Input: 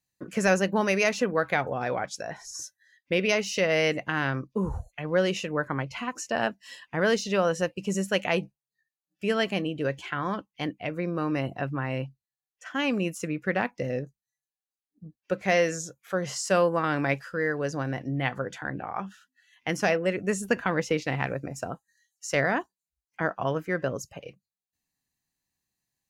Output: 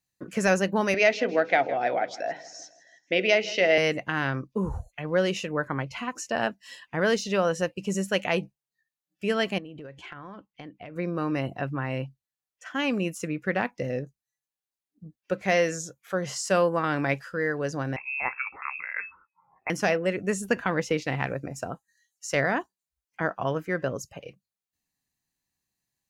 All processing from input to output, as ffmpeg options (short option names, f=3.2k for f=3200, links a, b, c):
-filter_complex "[0:a]asettb=1/sr,asplit=3[a][b][c];[a]atrim=end=0.944[d];[b]atrim=start=0.94:end=3.78,asetpts=PTS-STARTPTS,afade=t=in:d=0.004:c=qsin,afade=t=out:st=2.836:d=0.004:c=qsin,highpass=250,equalizer=f=300:t=q:w=4:g=6,equalizer=f=690:t=q:w=4:g=9,equalizer=f=1.1k:t=q:w=4:g=-10,equalizer=f=2k:t=q:w=4:g=5,equalizer=f=3.1k:t=q:w=4:g=4,lowpass=f=5.4k:w=0.5412,lowpass=f=5.4k:w=1.3066,bandreject=f=50:t=h:w=6,bandreject=f=100:t=h:w=6,bandreject=f=150:t=h:w=6,bandreject=f=200:t=h:w=6,bandreject=f=250:t=h:w=6,bandreject=f=300:t=h:w=6,bandreject=f=350:t=h:w=6,bandreject=f=400:t=h:w=6,bandreject=f=450:t=h:w=6,bandreject=f=500:t=h:w=6,aecho=1:1:161|322|483|644:0.126|0.0617|0.0302|0.0148,atrim=end_sample=125244[e];[c]atrim=start=3.776[f];[d][e]acrossfade=d=0.004:c1=hsin:c2=qsin[g];[g][f]acrossfade=d=0.004:c1=qsin:c2=hsin,asettb=1/sr,asplit=3[h][i][j];[h]atrim=end=9.584[k];[i]atrim=start=9.58:end=10.96,asetpts=PTS-STARTPTS,afade=t=in:d=0.004:c=qsin,afade=t=out:st=1.376:d=0.004:c=qsin,lowpass=f=2.6k:p=1,acompressor=threshold=-37dB:ratio=20:attack=3.2:release=140:knee=1:detection=peak[l];[j]atrim=start=10.956[m];[k][l]acrossfade=d=0.004:c1=hsin:c2=qsin[n];[n][m]acrossfade=d=0.004:c1=qsin:c2=hsin,asettb=1/sr,asplit=3[o][p][q];[o]atrim=end=17.964[r];[p]atrim=start=17.96:end=19.7,asetpts=PTS-STARTPTS,afade=t=in:d=0.004:c=qsin,afade=t=out:st=1.736:d=0.004:c=qsin,lowshelf=f=180:g=-7,lowpass=f=2.4k:t=q:w=0.5098,lowpass=f=2.4k:t=q:w=0.6013,lowpass=f=2.4k:t=q:w=0.9,lowpass=f=2.4k:t=q:w=2.563,afreqshift=-2800[s];[q]atrim=start=19.696[t];[r][s]acrossfade=d=0.004:c1=hsin:c2=qsin[u];[u][t]acrossfade=d=0.004:c1=qsin:c2=hsin"